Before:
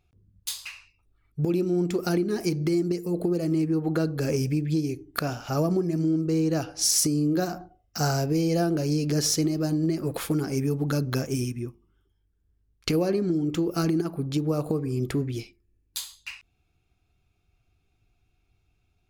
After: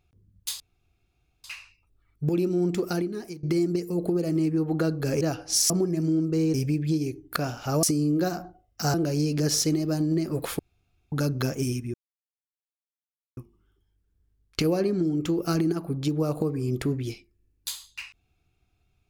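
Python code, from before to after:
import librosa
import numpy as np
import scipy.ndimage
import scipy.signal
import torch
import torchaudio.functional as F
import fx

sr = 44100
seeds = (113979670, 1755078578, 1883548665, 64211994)

y = fx.edit(x, sr, fx.insert_room_tone(at_s=0.6, length_s=0.84),
    fx.fade_out_to(start_s=1.94, length_s=0.65, floor_db=-20.5),
    fx.swap(start_s=4.37, length_s=1.29, other_s=6.5, other_length_s=0.49),
    fx.cut(start_s=8.1, length_s=0.56),
    fx.room_tone_fill(start_s=10.31, length_s=0.53),
    fx.insert_silence(at_s=11.66, length_s=1.43), tone=tone)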